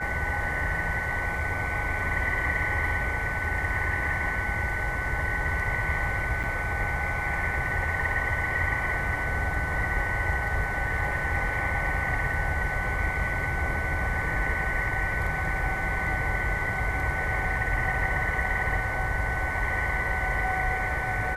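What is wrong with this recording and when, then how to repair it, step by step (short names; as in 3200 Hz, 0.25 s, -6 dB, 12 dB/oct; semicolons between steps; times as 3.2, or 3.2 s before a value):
tone 1500 Hz -32 dBFS
6.43–6.44 gap 7.3 ms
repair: notch 1500 Hz, Q 30; interpolate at 6.43, 7.3 ms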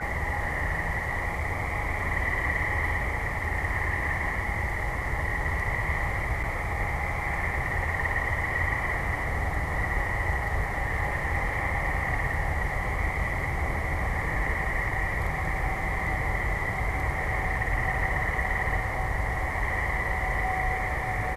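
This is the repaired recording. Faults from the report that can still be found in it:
none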